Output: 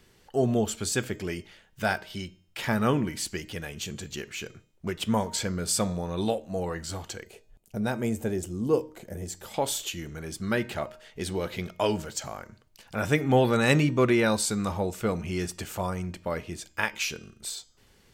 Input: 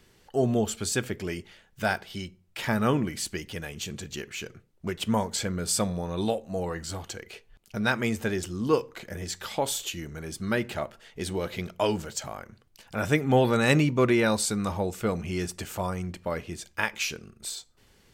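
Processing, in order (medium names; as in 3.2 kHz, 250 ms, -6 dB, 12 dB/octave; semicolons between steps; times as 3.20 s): 7.25–9.54 s: high-order bell 2.4 kHz -10 dB 2.7 oct; de-hum 310.3 Hz, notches 25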